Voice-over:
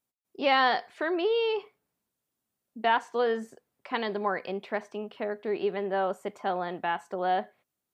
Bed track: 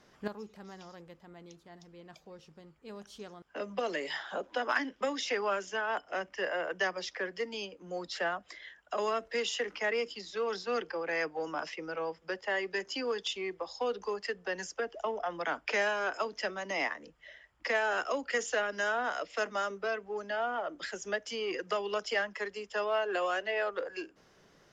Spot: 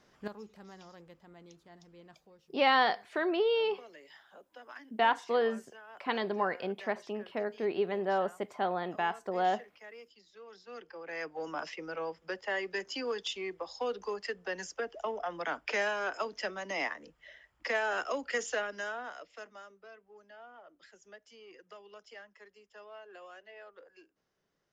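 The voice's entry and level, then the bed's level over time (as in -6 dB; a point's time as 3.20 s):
2.15 s, -2.0 dB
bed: 2.05 s -3 dB
2.69 s -18.5 dB
10.47 s -18.5 dB
11.49 s -1.5 dB
18.51 s -1.5 dB
19.74 s -19 dB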